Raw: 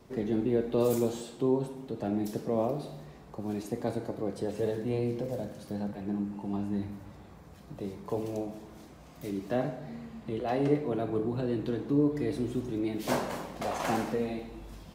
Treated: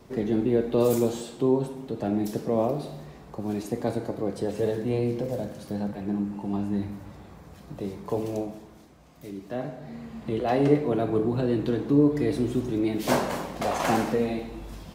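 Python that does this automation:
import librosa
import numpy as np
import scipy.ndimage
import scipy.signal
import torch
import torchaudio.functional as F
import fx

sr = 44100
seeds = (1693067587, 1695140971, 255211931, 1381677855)

y = fx.gain(x, sr, db=fx.line((8.39, 4.5), (8.87, -3.0), (9.52, -3.0), (10.24, 6.0)))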